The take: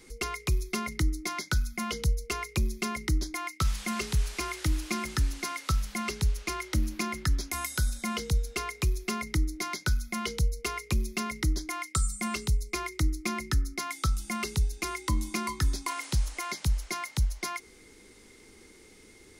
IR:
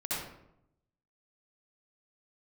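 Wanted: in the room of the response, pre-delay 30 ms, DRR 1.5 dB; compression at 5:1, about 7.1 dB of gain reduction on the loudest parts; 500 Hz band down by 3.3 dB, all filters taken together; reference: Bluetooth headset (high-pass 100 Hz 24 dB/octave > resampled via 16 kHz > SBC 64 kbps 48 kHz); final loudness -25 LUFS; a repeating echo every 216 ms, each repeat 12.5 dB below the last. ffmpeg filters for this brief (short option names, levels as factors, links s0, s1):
-filter_complex "[0:a]equalizer=f=500:t=o:g=-5,acompressor=threshold=0.0355:ratio=5,aecho=1:1:216|432|648:0.237|0.0569|0.0137,asplit=2[s0][s1];[1:a]atrim=start_sample=2205,adelay=30[s2];[s1][s2]afir=irnorm=-1:irlink=0,volume=0.447[s3];[s0][s3]amix=inputs=2:normalize=0,highpass=f=100:w=0.5412,highpass=f=100:w=1.3066,aresample=16000,aresample=44100,volume=2.99" -ar 48000 -c:a sbc -b:a 64k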